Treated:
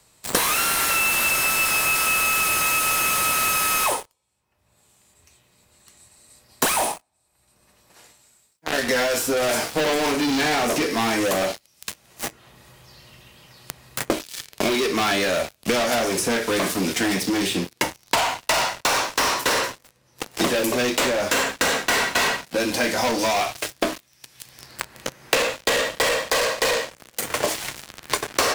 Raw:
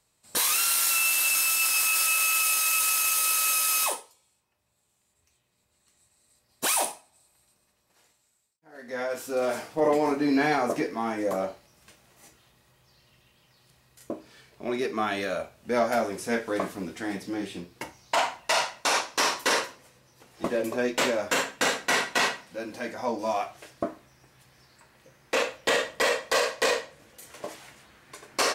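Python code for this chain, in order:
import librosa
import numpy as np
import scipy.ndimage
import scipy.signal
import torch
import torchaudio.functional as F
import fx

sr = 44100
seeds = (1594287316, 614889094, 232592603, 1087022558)

y = fx.leveller(x, sr, passes=5)
y = fx.band_squash(y, sr, depth_pct=100)
y = y * 10.0 ** (-7.0 / 20.0)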